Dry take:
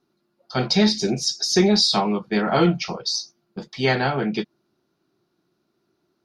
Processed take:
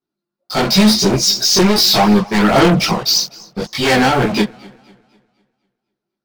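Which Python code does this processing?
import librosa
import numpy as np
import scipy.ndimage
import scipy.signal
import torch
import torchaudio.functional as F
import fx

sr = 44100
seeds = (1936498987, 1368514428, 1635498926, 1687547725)

y = fx.leveller(x, sr, passes=5)
y = fx.chorus_voices(y, sr, voices=2, hz=0.94, base_ms=18, depth_ms=3.0, mix_pct=60)
y = fx.echo_warbled(y, sr, ms=249, feedback_pct=40, rate_hz=2.8, cents=97, wet_db=-23.5)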